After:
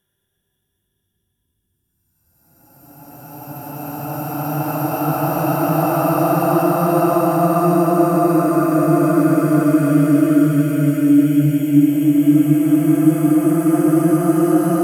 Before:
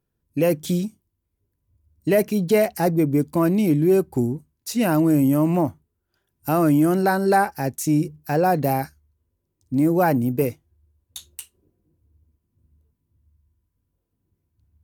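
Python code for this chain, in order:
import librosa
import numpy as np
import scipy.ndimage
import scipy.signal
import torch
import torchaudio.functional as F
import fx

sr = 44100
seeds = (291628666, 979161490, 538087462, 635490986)

y = fx.dereverb_blind(x, sr, rt60_s=0.51)
y = fx.paulstretch(y, sr, seeds[0], factor=24.0, window_s=0.25, from_s=6.27)
y = F.gain(torch.from_numpy(y), 3.5).numpy()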